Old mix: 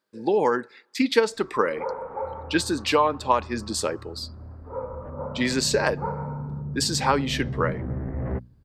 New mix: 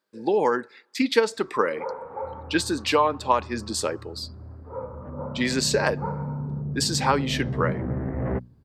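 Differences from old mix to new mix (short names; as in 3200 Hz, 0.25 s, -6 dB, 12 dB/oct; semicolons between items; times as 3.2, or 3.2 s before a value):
first sound: send -9.5 dB; second sound +4.5 dB; master: add HPF 120 Hz 6 dB/oct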